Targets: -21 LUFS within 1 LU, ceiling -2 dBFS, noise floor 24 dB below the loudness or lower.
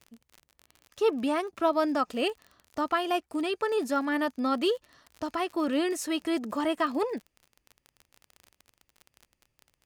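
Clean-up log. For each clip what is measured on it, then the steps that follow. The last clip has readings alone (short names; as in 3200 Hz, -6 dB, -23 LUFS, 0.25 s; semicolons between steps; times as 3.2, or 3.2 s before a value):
ticks 38/s; loudness -29.0 LUFS; peak -13.5 dBFS; loudness target -21.0 LUFS
-> de-click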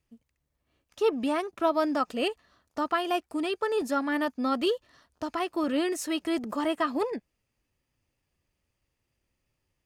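ticks 1.0/s; loudness -29.0 LUFS; peak -13.5 dBFS; loudness target -21.0 LUFS
-> gain +8 dB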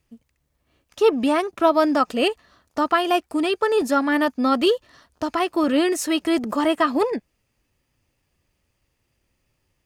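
loudness -21.0 LUFS; peak -5.5 dBFS; noise floor -73 dBFS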